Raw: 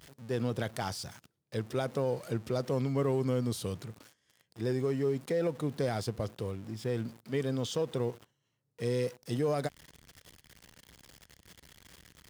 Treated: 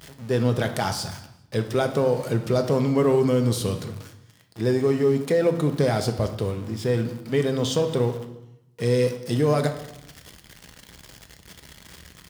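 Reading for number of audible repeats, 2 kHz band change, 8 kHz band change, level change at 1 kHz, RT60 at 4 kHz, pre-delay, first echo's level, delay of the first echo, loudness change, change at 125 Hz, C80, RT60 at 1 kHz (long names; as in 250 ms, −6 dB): 1, +10.5 dB, +9.5 dB, +10.0 dB, 0.80 s, 5 ms, −22.0 dB, 203 ms, +10.0 dB, +9.5 dB, 12.5 dB, 0.85 s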